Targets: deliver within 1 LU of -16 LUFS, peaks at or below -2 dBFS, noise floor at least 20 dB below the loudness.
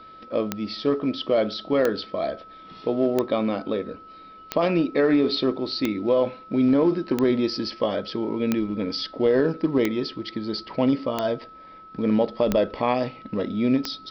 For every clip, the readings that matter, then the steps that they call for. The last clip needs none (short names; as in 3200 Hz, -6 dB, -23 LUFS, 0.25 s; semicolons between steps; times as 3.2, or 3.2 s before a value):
clicks 11; steady tone 1300 Hz; tone level -43 dBFS; loudness -24.5 LUFS; peak -7.5 dBFS; loudness target -16.0 LUFS
-> de-click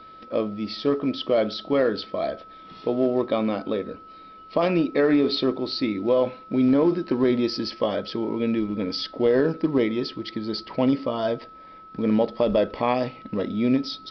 clicks 0; steady tone 1300 Hz; tone level -43 dBFS
-> notch 1300 Hz, Q 30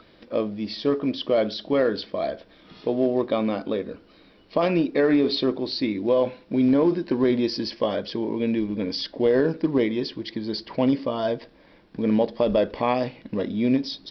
steady tone none; loudness -24.5 LUFS; peak -7.5 dBFS; loudness target -16.0 LUFS
-> gain +8.5 dB; limiter -2 dBFS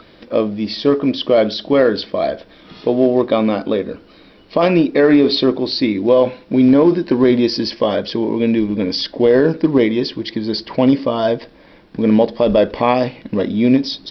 loudness -16.0 LUFS; peak -2.0 dBFS; noise floor -46 dBFS